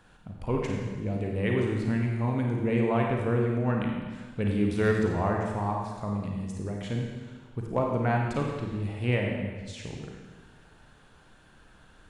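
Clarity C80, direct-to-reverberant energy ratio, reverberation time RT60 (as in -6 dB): 3.0 dB, -0.5 dB, 1.4 s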